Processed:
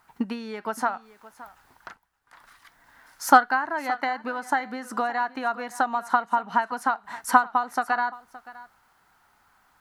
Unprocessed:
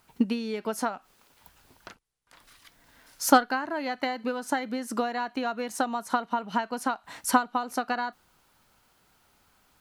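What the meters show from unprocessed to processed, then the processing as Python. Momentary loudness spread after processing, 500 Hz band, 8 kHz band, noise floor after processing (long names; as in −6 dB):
14 LU, −1.5 dB, −3.5 dB, −64 dBFS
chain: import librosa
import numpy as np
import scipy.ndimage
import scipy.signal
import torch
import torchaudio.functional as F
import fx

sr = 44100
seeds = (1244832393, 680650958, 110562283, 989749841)

p1 = fx.band_shelf(x, sr, hz=1200.0, db=9.5, octaves=1.7)
p2 = p1 + fx.echo_single(p1, sr, ms=569, db=-18.5, dry=0)
y = p2 * librosa.db_to_amplitude(-3.5)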